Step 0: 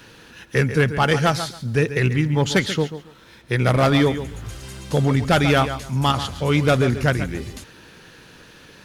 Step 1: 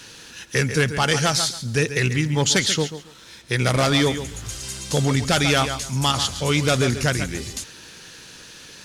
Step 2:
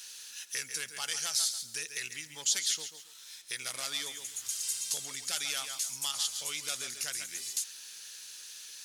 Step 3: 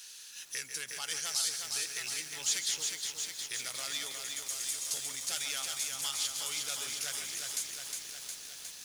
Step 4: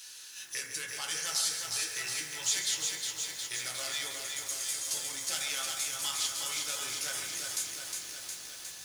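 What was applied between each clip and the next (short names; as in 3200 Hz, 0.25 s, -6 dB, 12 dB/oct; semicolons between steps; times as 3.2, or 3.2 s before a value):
bell 6900 Hz +14.5 dB 2.1 oct; in parallel at +1 dB: limiter -8.5 dBFS, peak gain reduction 10 dB; on the sum: gain -8.5 dB
compressor 2:1, threshold -26 dBFS, peak gain reduction 6.5 dB; differentiator
lo-fi delay 0.36 s, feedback 80%, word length 8-bit, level -4 dB; gain -2.5 dB
reverb RT60 0.80 s, pre-delay 4 ms, DRR -0.5 dB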